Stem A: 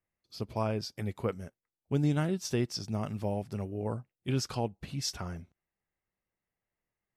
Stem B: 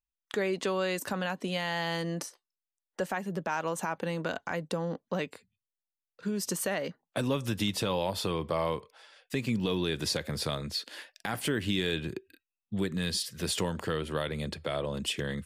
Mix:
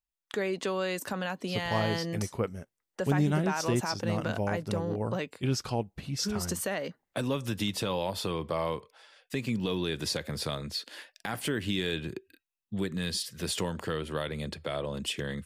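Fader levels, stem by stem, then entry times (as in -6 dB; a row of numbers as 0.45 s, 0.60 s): +1.5 dB, -1.0 dB; 1.15 s, 0.00 s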